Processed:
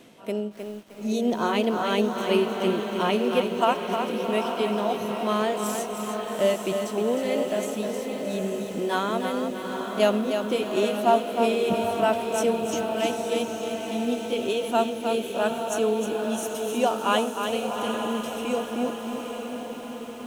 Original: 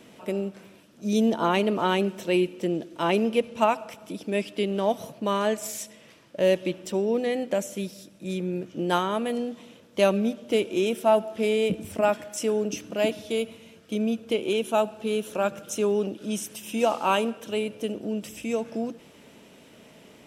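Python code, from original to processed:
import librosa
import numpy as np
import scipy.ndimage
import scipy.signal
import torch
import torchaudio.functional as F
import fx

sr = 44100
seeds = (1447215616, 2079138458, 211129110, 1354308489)

y = fx.pitch_heads(x, sr, semitones=1.0)
y = fx.echo_diffused(y, sr, ms=852, feedback_pct=56, wet_db=-6.0)
y = fx.echo_crushed(y, sr, ms=310, feedback_pct=35, bits=8, wet_db=-6.5)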